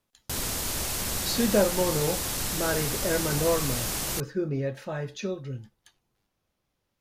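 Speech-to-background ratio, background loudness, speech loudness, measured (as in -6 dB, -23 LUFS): -0.5 dB, -29.0 LUFS, -29.5 LUFS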